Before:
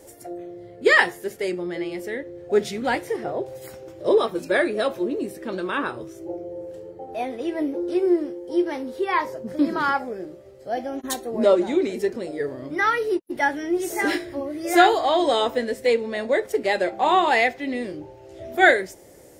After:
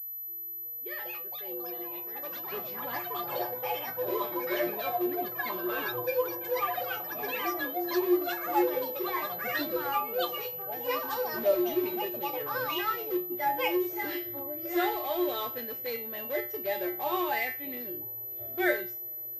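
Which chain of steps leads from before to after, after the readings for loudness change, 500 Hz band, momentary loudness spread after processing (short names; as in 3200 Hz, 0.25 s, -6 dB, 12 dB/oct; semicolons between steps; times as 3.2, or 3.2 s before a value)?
-8.5 dB, -9.0 dB, 8 LU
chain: opening faded in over 5.00 s; in parallel at -11 dB: wrapped overs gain 19.5 dB; on the sum: resonator 120 Hz, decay 0.33 s, harmonics odd, mix 90%; echoes that change speed 0.446 s, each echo +6 st, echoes 3; pulse-width modulation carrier 12000 Hz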